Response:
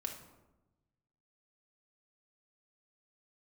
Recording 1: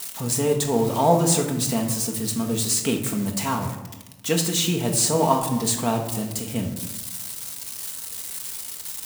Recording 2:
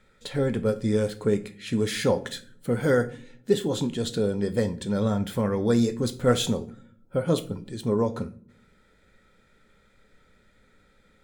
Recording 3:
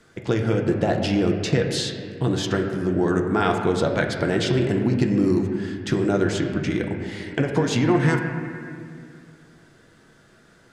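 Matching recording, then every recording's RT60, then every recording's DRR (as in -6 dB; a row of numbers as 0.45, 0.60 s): 1; 1.0 s, not exponential, 2.2 s; 1.0, 10.0, 1.5 dB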